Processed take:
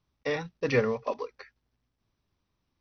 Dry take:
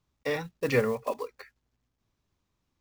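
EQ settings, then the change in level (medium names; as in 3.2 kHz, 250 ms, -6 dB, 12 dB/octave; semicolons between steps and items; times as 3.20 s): brick-wall FIR low-pass 6.2 kHz; 0.0 dB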